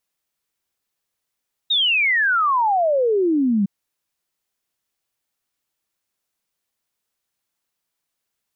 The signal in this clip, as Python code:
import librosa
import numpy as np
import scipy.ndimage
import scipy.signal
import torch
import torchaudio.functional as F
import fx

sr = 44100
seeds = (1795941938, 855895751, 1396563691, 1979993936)

y = fx.ess(sr, length_s=1.96, from_hz=3800.0, to_hz=190.0, level_db=-15.0)